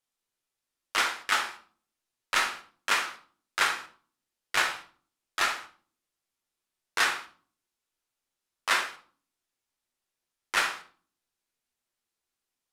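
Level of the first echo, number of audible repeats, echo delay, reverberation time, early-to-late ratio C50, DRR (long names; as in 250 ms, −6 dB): no echo audible, no echo audible, no echo audible, 0.45 s, 10.0 dB, 3.5 dB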